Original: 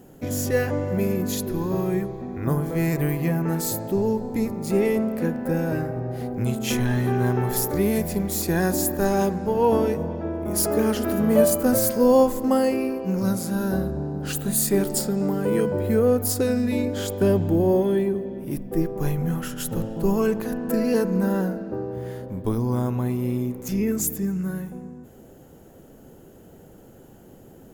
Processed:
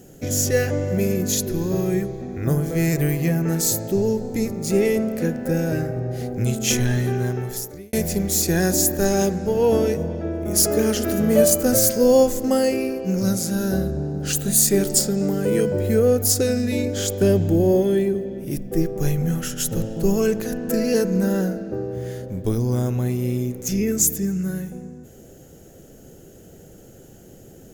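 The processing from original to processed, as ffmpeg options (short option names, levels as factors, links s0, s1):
-filter_complex "[0:a]asplit=2[s0][s1];[s0]atrim=end=7.93,asetpts=PTS-STARTPTS,afade=t=out:st=6.86:d=1.07[s2];[s1]atrim=start=7.93,asetpts=PTS-STARTPTS,afade=t=in:d=0.004:c=hsin[s3];[s2][s3]concat=n=2:v=0:a=1,equalizer=f=250:t=o:w=0.67:g=-4,equalizer=f=1000:t=o:w=0.67:g=-12,equalizer=f=6300:t=o:w=0.67:g=8,volume=1.58"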